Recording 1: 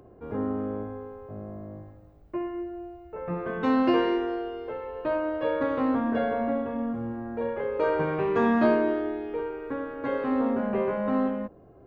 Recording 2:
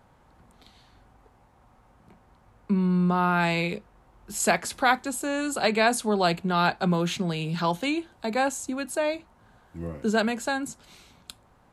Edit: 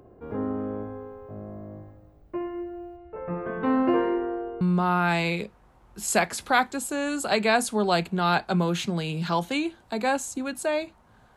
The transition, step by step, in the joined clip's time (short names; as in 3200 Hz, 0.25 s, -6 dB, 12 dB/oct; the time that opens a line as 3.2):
recording 1
2.96–4.61 LPF 3800 Hz -> 1200 Hz
4.61 switch to recording 2 from 2.93 s